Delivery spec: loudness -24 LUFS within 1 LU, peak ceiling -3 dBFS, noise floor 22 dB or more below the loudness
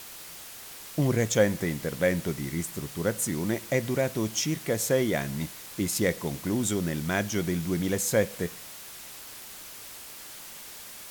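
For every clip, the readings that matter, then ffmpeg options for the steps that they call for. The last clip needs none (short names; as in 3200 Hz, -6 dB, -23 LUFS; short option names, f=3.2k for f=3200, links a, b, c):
noise floor -44 dBFS; noise floor target -50 dBFS; loudness -28.0 LUFS; peak -10.0 dBFS; loudness target -24.0 LUFS
-> -af "afftdn=nr=6:nf=-44"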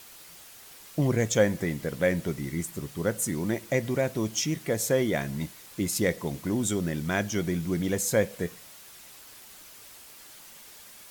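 noise floor -49 dBFS; noise floor target -51 dBFS
-> -af "afftdn=nr=6:nf=-49"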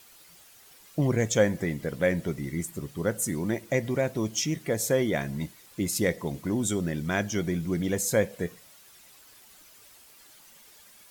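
noise floor -54 dBFS; loudness -28.5 LUFS; peak -10.0 dBFS; loudness target -24.0 LUFS
-> -af "volume=4.5dB"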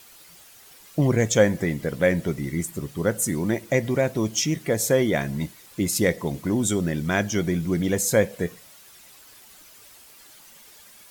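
loudness -24.0 LUFS; peak -5.5 dBFS; noise floor -50 dBFS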